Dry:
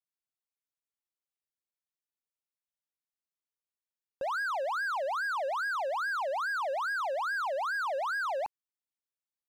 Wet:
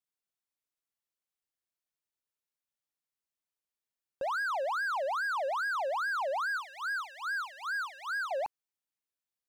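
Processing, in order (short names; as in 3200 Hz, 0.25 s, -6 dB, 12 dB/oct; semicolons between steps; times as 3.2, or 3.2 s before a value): 6.57–8.31 HPF 1300 Hz 24 dB/oct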